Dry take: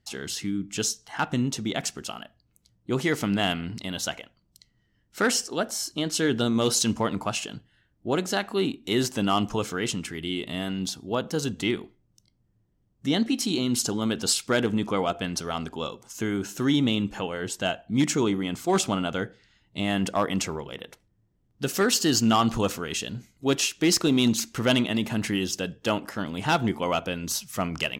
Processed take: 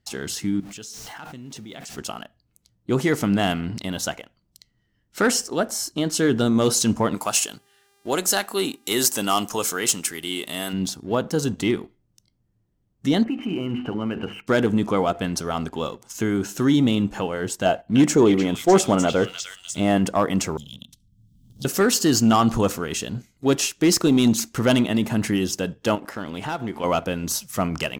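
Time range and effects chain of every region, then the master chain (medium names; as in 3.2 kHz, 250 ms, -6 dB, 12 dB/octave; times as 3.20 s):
0.60–1.98 s: jump at every zero crossing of -33 dBFS + level held to a coarse grid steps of 21 dB
7.14–10.72 s: RIAA curve recording + mains buzz 400 Hz, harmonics 32, -63 dBFS -3 dB/octave
13.24–14.47 s: brick-wall FIR low-pass 3.1 kHz + hum notches 50/100/150/200/250/300/350/400/450 Hz + compression 4:1, threshold -27 dBFS
17.65–19.98 s: dynamic bell 510 Hz, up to +7 dB, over -36 dBFS, Q 0.92 + repeats whose band climbs or falls 301 ms, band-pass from 2.8 kHz, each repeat 0.7 oct, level 0 dB
20.57–21.65 s: Chebyshev band-stop 250–3300 Hz, order 4 + three bands compressed up and down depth 100%
25.95–26.84 s: tone controls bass -5 dB, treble -4 dB + compression 2.5:1, threshold -32 dBFS
whole clip: waveshaping leveller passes 1; dynamic bell 3.2 kHz, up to -6 dB, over -39 dBFS, Q 0.78; trim +1.5 dB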